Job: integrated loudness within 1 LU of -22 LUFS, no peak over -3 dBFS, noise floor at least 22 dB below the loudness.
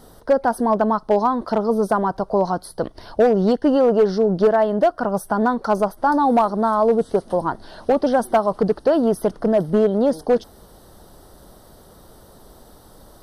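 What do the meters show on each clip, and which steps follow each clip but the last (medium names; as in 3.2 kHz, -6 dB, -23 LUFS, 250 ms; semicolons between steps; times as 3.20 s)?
clipped samples 1.3%; clipping level -9.0 dBFS; loudness -19.5 LUFS; peak level -9.0 dBFS; loudness target -22.0 LUFS
-> clip repair -9 dBFS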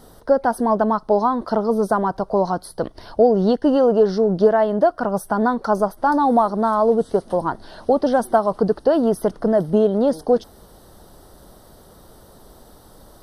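clipped samples 0.0%; loudness -19.0 LUFS; peak level -3.5 dBFS; loudness target -22.0 LUFS
-> trim -3 dB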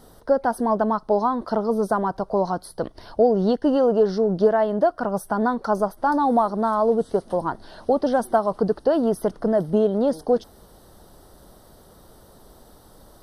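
loudness -22.0 LUFS; peak level -6.5 dBFS; noise floor -51 dBFS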